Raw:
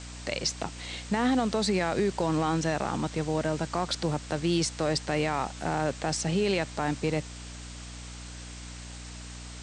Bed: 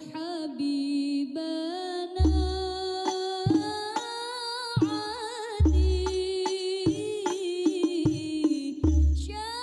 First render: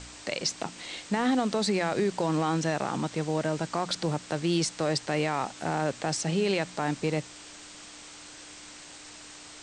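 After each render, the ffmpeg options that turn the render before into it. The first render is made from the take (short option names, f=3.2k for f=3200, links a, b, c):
-af "bandreject=f=60:t=h:w=4,bandreject=f=120:t=h:w=4,bandreject=f=180:t=h:w=4,bandreject=f=240:t=h:w=4"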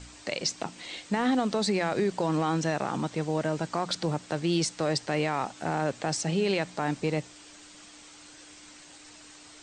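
-af "afftdn=nr=6:nf=-47"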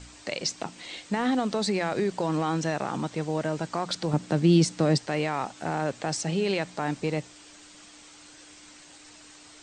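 -filter_complex "[0:a]asettb=1/sr,asplit=3[a][b][c];[a]atrim=end=4.134[d];[b]atrim=start=4.13:end=4.98,asetpts=PTS-STARTPTS,afade=t=in:d=0.004:c=qsin,afade=t=out:st=0.846:d=0.004:c=qsin,equalizer=f=200:w=0.77:g=11[e];[c]atrim=start=4.976[f];[d][e]acrossfade=d=0.004:c1=hsin:c2=qsin[g];[g][f]acrossfade=d=0.004:c1=qsin:c2=hsin"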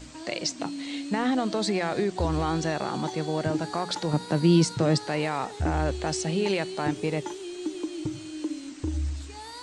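-filter_complex "[1:a]volume=-7dB[a];[0:a][a]amix=inputs=2:normalize=0"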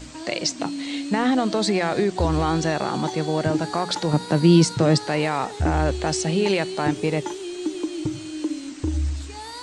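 -af "volume=5dB"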